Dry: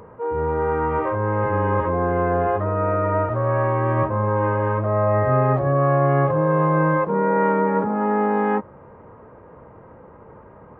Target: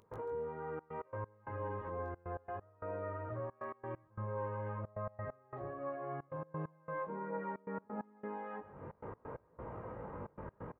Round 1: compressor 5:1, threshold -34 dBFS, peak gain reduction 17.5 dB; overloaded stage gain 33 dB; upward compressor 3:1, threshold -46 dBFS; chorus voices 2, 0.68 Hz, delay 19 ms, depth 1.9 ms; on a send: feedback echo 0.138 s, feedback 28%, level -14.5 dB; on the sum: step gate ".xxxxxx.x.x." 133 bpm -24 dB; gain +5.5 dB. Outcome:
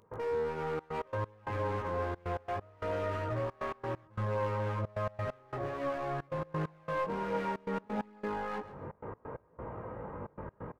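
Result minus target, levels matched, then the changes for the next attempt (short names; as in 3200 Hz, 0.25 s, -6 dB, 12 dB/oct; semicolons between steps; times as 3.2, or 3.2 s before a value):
compressor: peak gain reduction -9 dB
change: compressor 5:1, threshold -45 dBFS, peak gain reduction 26 dB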